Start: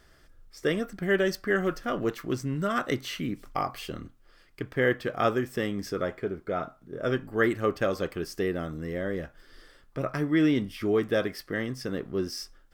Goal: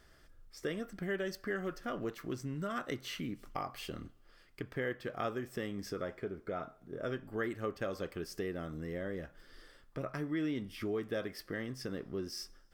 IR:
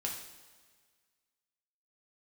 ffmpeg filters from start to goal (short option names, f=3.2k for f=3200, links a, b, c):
-filter_complex "[0:a]acompressor=threshold=-35dB:ratio=2,asplit=2[a][b];[1:a]atrim=start_sample=2205[c];[b][c]afir=irnorm=-1:irlink=0,volume=-20.5dB[d];[a][d]amix=inputs=2:normalize=0,volume=-4.5dB"